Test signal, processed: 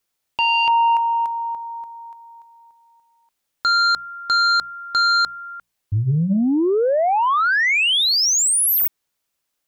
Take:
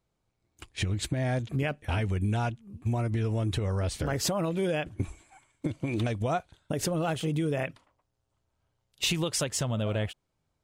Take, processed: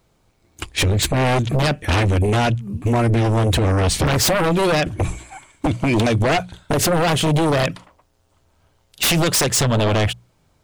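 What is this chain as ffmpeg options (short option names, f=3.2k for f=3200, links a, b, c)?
-af "bandreject=f=60:t=h:w=6,bandreject=f=120:t=h:w=6,bandreject=f=180:t=h:w=6,aeval=exprs='0.168*sin(PI/2*3.98*val(0)/0.168)':c=same,volume=2dB"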